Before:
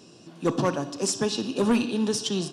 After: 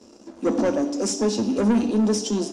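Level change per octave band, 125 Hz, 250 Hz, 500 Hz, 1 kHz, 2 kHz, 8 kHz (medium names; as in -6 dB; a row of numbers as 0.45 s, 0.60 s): +0.5 dB, +5.0 dB, +3.5 dB, 0.0 dB, -2.0 dB, +1.0 dB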